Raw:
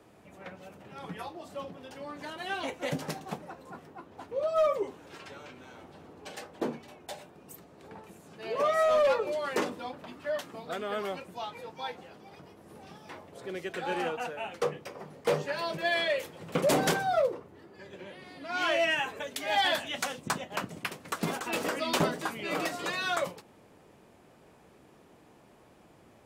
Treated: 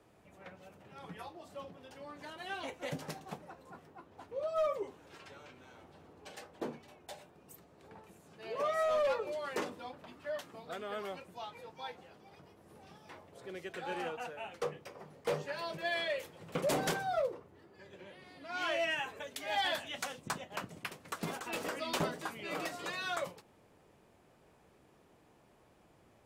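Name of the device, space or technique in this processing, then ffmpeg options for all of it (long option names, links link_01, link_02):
low shelf boost with a cut just above: -af "lowshelf=frequency=76:gain=5,equalizer=frequency=240:width_type=o:width=1.1:gain=-2.5,volume=-6.5dB"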